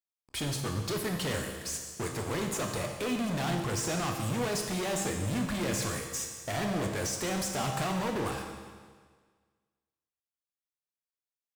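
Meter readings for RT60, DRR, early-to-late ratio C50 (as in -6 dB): 1.6 s, 2.5 dB, 4.0 dB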